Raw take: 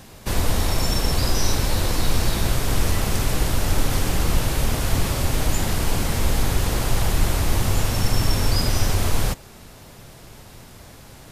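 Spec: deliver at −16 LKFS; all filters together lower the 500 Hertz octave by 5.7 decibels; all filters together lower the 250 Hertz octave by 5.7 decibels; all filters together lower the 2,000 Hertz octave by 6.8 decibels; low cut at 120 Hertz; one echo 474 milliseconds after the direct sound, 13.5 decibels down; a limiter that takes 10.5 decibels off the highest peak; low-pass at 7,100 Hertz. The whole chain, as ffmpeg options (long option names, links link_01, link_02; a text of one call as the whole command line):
ffmpeg -i in.wav -af "highpass=120,lowpass=7100,equalizer=frequency=250:width_type=o:gain=-6,equalizer=frequency=500:width_type=o:gain=-5,equalizer=frequency=2000:width_type=o:gain=-8.5,alimiter=level_in=2dB:limit=-24dB:level=0:latency=1,volume=-2dB,aecho=1:1:474:0.211,volume=18.5dB" out.wav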